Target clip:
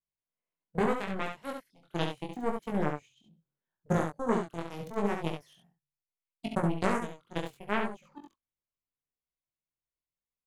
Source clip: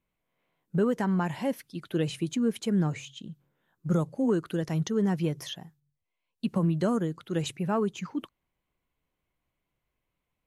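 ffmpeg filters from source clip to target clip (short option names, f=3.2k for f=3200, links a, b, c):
-af "aeval=exprs='0.178*(cos(1*acos(clip(val(0)/0.178,-1,1)))-cos(1*PI/2))+0.0631*(cos(3*acos(clip(val(0)/0.178,-1,1)))-cos(3*PI/2))':c=same,flanger=delay=18.5:depth=5.4:speed=0.76,aecho=1:1:42|69:0.2|0.531,volume=6dB"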